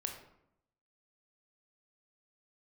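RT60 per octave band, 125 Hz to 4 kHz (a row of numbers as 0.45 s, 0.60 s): 0.95 s, 0.90 s, 0.80 s, 0.75 s, 0.60 s, 0.45 s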